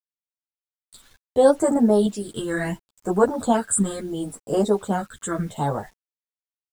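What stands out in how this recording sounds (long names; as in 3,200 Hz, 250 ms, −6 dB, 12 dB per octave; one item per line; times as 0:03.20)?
phaser sweep stages 8, 0.72 Hz, lowest notch 700–3,700 Hz
sample-and-hold tremolo 3.4 Hz, depth 65%
a quantiser's noise floor 10 bits, dither none
a shimmering, thickened sound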